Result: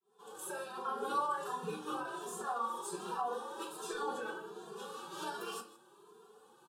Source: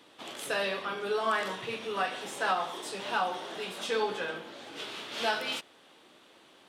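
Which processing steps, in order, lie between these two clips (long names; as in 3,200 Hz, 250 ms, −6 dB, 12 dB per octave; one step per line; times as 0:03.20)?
fade in at the beginning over 0.51 s
high-pass filter 65 Hz 12 dB per octave
flat-topped bell 3,600 Hz −9 dB
brickwall limiter −26 dBFS, peak gain reduction 9 dB
phase-vocoder pitch shift with formants kept +5 semitones
phaser with its sweep stopped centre 410 Hz, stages 8
single-tap delay 157 ms −18.5 dB
rectangular room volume 230 cubic metres, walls furnished, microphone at 1.2 metres
barber-pole flanger 2.5 ms +1.3 Hz
level +2.5 dB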